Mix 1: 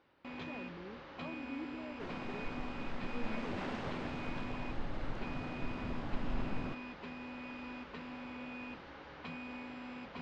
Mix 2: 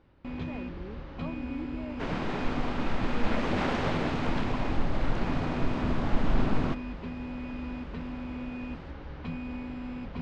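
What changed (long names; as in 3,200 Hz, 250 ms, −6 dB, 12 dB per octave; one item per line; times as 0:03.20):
speech +5.5 dB
first sound: remove high-pass filter 720 Hz 6 dB per octave
second sound +12.0 dB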